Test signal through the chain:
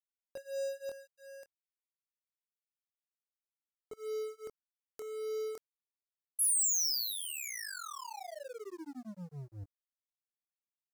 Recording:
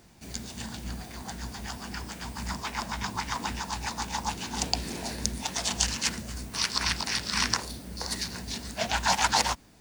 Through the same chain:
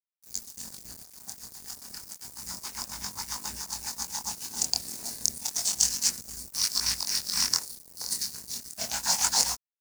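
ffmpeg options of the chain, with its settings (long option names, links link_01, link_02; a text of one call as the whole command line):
ffmpeg -i in.wav -af "flanger=delay=20:depth=6.1:speed=0.3,aeval=exprs='sgn(val(0))*max(abs(val(0))-0.0075,0)':channel_layout=same,aexciter=amount=4.3:drive=7.8:freq=4600,volume=-4.5dB" out.wav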